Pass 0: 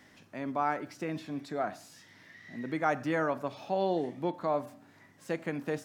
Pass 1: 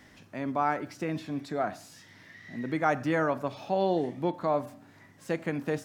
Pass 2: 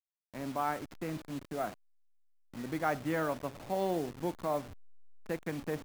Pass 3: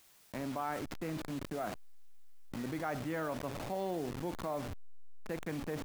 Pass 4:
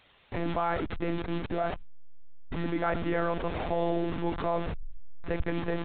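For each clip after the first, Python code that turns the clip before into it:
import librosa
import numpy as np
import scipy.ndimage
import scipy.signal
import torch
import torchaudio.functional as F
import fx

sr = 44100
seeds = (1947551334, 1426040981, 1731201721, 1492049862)

y1 = fx.low_shelf(x, sr, hz=75.0, db=11.5)
y1 = F.gain(torch.from_numpy(y1), 2.5).numpy()
y2 = fx.delta_hold(y1, sr, step_db=-36.0)
y2 = F.gain(torch.from_numpy(y2), -5.5).numpy()
y3 = fx.env_flatten(y2, sr, amount_pct=70)
y3 = F.gain(torch.from_numpy(y3), -7.0).numpy()
y4 = fx.lpc_monotone(y3, sr, seeds[0], pitch_hz=170.0, order=16)
y4 = F.gain(torch.from_numpy(y4), 8.5).numpy()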